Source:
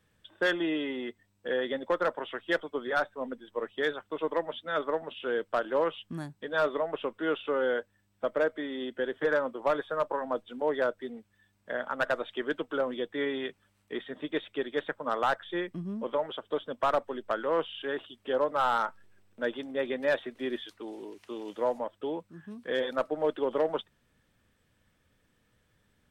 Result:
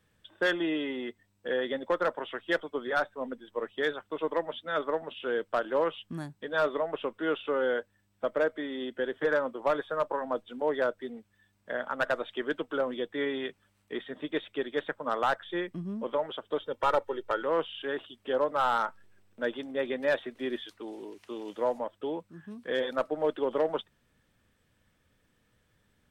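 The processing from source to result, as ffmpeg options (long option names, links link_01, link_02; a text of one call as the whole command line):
ffmpeg -i in.wav -filter_complex "[0:a]asettb=1/sr,asplit=3[link_01][link_02][link_03];[link_01]atrim=end=16.604[link_04];[link_02]atrim=start=16.6:end=17.42,asetpts=PTS-STARTPTS,afade=type=in:duration=0.004:curve=qsin,afade=type=out:start_time=0.816:duration=0.004:curve=qsin,aecho=1:1:2.2:0.65,atrim=end_sample=36162[link_05];[link_03]atrim=start=17.416[link_06];[link_04][link_05]acrossfade=duration=0.004:curve1=hsin:curve2=qsin[link_07];[link_07][link_06]acrossfade=duration=0.004:curve1=qsin:curve2=hsin" out.wav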